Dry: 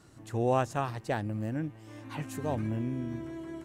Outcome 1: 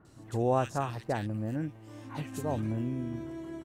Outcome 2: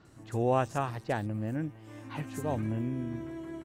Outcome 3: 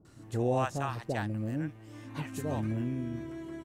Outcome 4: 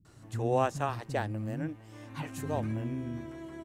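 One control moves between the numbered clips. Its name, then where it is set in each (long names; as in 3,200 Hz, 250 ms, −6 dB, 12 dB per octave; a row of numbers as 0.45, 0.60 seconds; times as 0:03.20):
multiband delay without the direct sound, split: 1,900, 4,800, 700, 230 Hertz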